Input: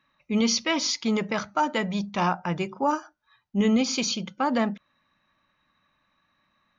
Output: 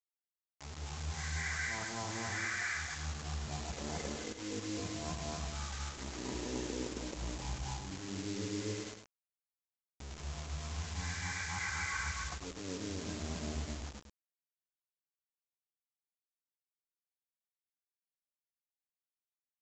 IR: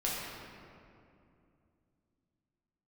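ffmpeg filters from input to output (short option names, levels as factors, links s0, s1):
-filter_complex "[0:a]afftfilt=real='re':imag='-im':win_size=8192:overlap=0.75,areverse,acompressor=threshold=0.0178:ratio=20,areverse,equalizer=f=360:t=o:w=1.1:g=-2.5,aresample=16000,aeval=exprs='sgn(val(0))*max(abs(val(0))-0.00126,0)':c=same,aresample=44100,acrusher=bits=7:mix=0:aa=0.000001,asplit=2[s0][s1];[s1]adelay=36,volume=0.422[s2];[s0][s2]amix=inputs=2:normalize=0,asetrate=15259,aresample=44100,aemphasis=mode=production:type=75fm"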